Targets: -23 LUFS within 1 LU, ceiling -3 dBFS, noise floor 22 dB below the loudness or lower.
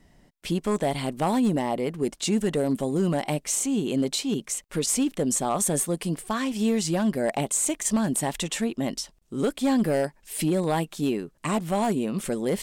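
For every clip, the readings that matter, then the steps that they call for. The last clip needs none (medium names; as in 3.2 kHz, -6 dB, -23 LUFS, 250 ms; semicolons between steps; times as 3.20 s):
clipped samples 0.8%; clipping level -16.5 dBFS; loudness -26.0 LUFS; peak level -16.5 dBFS; loudness target -23.0 LUFS
-> clip repair -16.5 dBFS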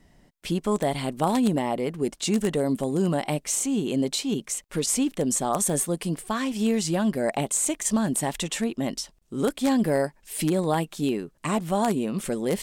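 clipped samples 0.0%; loudness -26.0 LUFS; peak level -7.5 dBFS; loudness target -23.0 LUFS
-> trim +3 dB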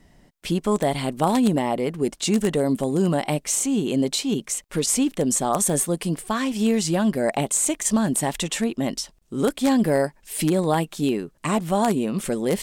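loudness -23.0 LUFS; peak level -4.5 dBFS; noise floor -58 dBFS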